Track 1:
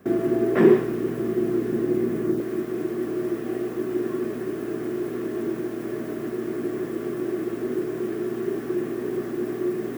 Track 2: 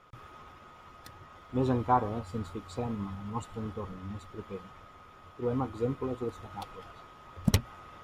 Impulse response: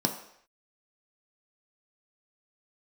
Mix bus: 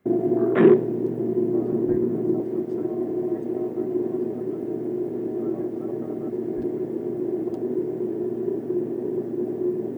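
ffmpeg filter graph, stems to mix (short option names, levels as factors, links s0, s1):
-filter_complex "[0:a]volume=1.12[s0];[1:a]acompressor=threshold=0.0224:ratio=6,aeval=exprs='val(0)*sin(2*PI*850*n/s)':c=same,volume=1.19[s1];[s0][s1]amix=inputs=2:normalize=0,afwtdn=0.0447"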